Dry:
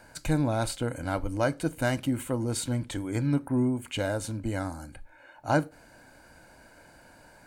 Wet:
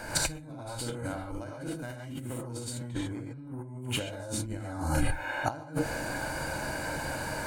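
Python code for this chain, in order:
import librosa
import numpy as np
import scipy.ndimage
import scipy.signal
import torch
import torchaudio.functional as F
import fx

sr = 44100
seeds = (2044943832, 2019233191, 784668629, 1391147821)

y = fx.high_shelf(x, sr, hz=4000.0, db=-8.5, at=(2.84, 3.43))
y = fx.rev_gated(y, sr, seeds[0], gate_ms=160, shape='rising', drr_db=-7.0)
y = fx.over_compress(y, sr, threshold_db=-36.0, ratio=-1.0)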